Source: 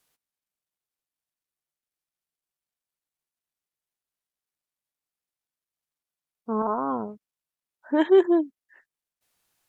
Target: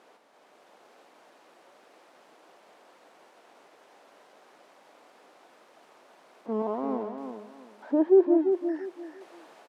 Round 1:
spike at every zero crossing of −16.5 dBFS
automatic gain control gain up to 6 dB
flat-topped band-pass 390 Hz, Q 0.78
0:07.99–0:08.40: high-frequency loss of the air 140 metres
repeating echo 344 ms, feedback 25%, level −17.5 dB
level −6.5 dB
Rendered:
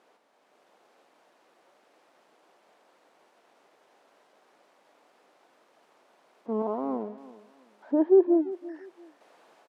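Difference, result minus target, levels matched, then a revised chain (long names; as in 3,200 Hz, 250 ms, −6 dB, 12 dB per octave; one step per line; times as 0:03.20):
echo-to-direct −10 dB; spike at every zero crossing: distortion −6 dB
spike at every zero crossing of −10.5 dBFS
automatic gain control gain up to 6 dB
flat-topped band-pass 390 Hz, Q 0.78
0:07.99–0:08.40: high-frequency loss of the air 140 metres
repeating echo 344 ms, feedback 25%, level −7.5 dB
level −6.5 dB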